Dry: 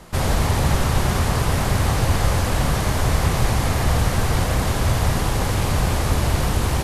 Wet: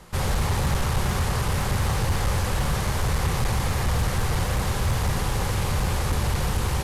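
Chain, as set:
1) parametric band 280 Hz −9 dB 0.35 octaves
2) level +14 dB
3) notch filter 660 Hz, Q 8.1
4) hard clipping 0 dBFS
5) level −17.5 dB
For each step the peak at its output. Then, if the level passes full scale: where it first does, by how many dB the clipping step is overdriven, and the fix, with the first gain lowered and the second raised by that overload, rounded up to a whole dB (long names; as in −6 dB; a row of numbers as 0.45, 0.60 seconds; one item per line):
−5.5, +8.5, +8.0, 0.0, −17.5 dBFS
step 2, 8.0 dB
step 2 +6 dB, step 5 −9.5 dB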